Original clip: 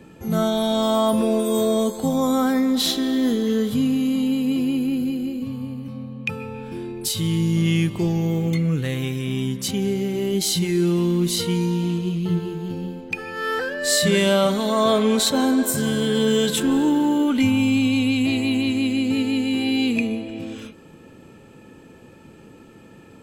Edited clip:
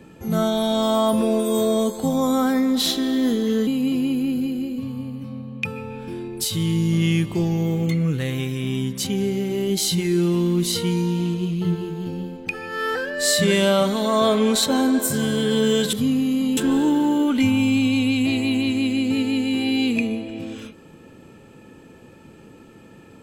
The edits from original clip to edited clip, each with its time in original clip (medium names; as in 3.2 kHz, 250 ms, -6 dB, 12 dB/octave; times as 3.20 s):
3.67–4.31 s: move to 16.57 s